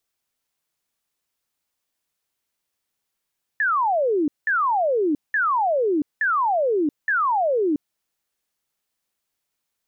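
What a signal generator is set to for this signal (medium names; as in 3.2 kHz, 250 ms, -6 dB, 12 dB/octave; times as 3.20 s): burst of laser zaps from 1.8 kHz, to 280 Hz, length 0.68 s sine, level -17.5 dB, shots 5, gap 0.19 s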